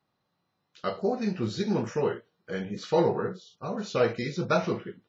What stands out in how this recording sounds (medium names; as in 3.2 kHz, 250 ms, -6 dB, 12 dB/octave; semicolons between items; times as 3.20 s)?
noise floor -79 dBFS; spectral tilt -5.5 dB/octave